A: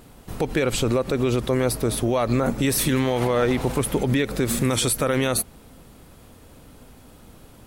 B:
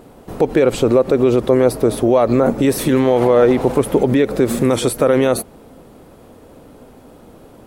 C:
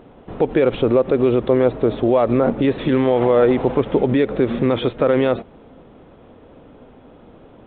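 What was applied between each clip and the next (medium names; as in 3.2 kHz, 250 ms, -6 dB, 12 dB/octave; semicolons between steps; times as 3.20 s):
peaking EQ 470 Hz +13 dB 2.9 oct; trim -2.5 dB
trim -2.5 dB; µ-law 64 kbps 8 kHz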